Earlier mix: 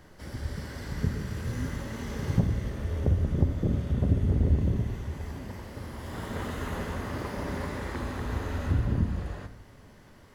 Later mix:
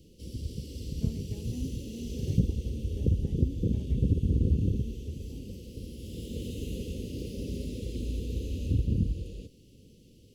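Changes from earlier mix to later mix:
background: add Chebyshev band-stop 500–2700 Hz, order 4; reverb: off

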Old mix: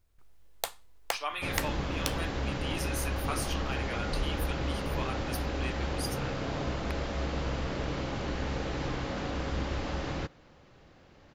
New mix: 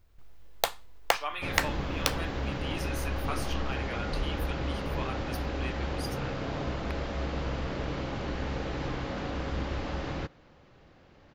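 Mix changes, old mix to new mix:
first sound +8.0 dB; master: add bell 10000 Hz -8 dB 1.3 oct

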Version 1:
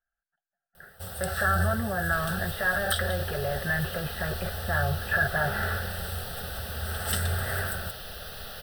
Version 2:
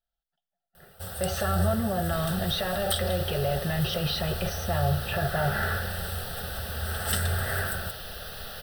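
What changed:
speech: remove synth low-pass 1600 Hz, resonance Q 8.7; reverb: on, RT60 1.2 s

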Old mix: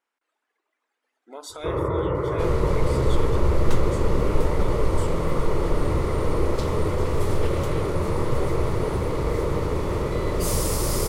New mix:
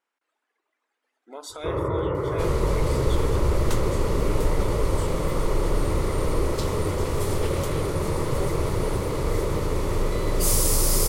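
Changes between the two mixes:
second sound: add high shelf 4500 Hz +9 dB; reverb: off

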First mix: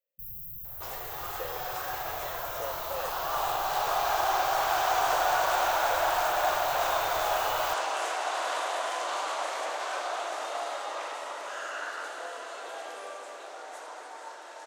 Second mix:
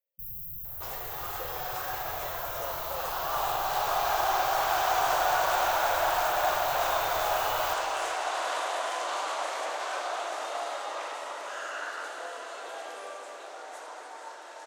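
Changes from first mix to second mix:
speech -3.5 dB; first sound: send +10.5 dB

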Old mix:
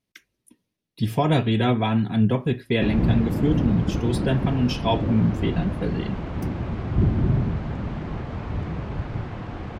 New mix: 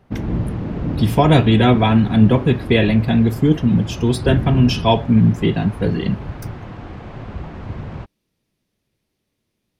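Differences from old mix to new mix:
speech +7.5 dB; background: entry -2.70 s

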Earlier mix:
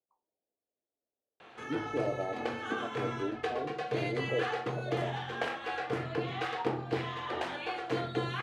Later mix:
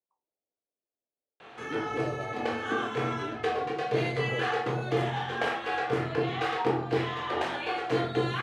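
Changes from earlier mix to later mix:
speech -4.0 dB; background: send +11.5 dB

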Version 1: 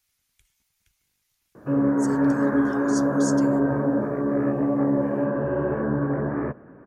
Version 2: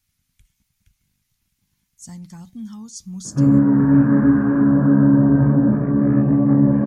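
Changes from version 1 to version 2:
background: entry +1.70 s; master: add resonant low shelf 290 Hz +11.5 dB, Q 1.5

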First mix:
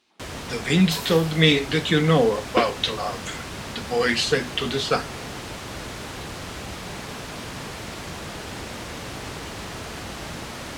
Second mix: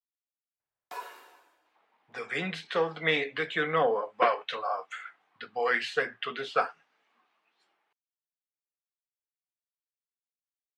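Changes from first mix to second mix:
speech: entry +1.65 s; first sound: muted; master: add three-band isolator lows -21 dB, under 540 Hz, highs -20 dB, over 2200 Hz

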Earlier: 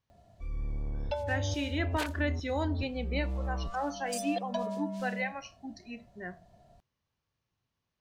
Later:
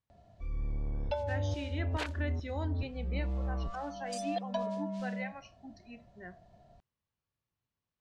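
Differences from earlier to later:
speech -6.5 dB; master: add air absorption 71 m

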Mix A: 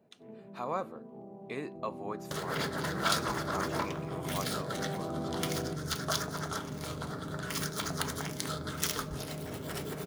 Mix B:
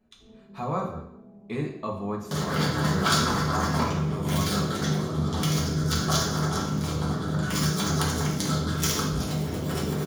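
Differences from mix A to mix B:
speech: remove HPF 240 Hz 12 dB/oct; first sound -11.0 dB; reverb: on, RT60 0.70 s

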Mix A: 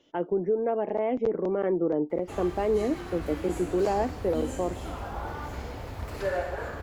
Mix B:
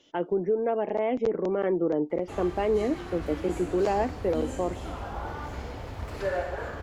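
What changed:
speech: add high shelf 2900 Hz +11.5 dB; master: add high shelf 12000 Hz -11 dB

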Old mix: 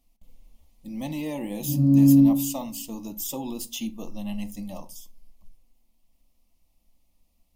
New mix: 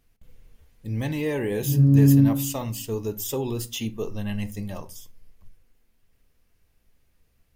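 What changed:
background -4.0 dB; master: remove fixed phaser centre 420 Hz, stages 6

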